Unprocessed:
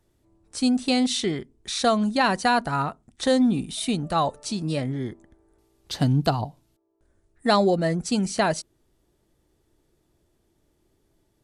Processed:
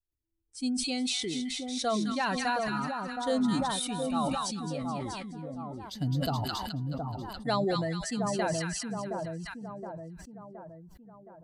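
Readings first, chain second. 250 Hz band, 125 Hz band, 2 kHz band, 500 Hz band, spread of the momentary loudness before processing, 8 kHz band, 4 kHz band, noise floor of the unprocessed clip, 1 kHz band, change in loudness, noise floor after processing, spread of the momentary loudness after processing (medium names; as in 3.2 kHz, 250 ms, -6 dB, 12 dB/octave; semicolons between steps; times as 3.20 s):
-7.0 dB, -6.5 dB, -6.5 dB, -7.0 dB, 11 LU, -3.0 dB, -5.0 dB, -69 dBFS, -6.5 dB, -8.0 dB, -55 dBFS, 13 LU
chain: expander on every frequency bin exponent 1.5; two-band feedback delay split 1.2 kHz, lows 719 ms, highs 213 ms, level -4.5 dB; decay stretcher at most 21 dB/s; trim -8 dB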